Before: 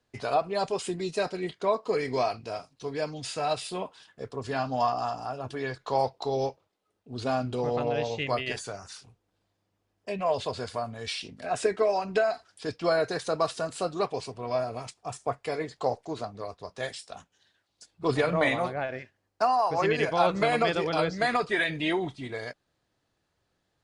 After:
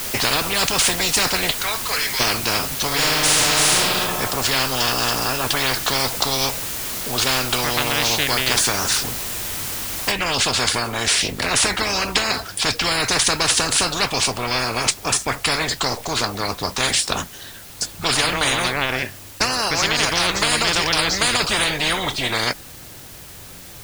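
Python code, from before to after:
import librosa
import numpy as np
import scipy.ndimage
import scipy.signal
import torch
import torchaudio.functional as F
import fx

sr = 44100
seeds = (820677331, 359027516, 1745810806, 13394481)

y = fx.ladder_highpass(x, sr, hz=1200.0, resonance_pct=25, at=(1.51, 2.19), fade=0.02)
y = fx.reverb_throw(y, sr, start_s=2.87, length_s=0.9, rt60_s=1.2, drr_db=-8.0)
y = fx.noise_floor_step(y, sr, seeds[0], at_s=10.11, before_db=-55, after_db=-68, tilt_db=0.0)
y = fx.low_shelf(y, sr, hz=220.0, db=9.0)
y = fx.spectral_comp(y, sr, ratio=10.0)
y = F.gain(torch.from_numpy(y), 4.0).numpy()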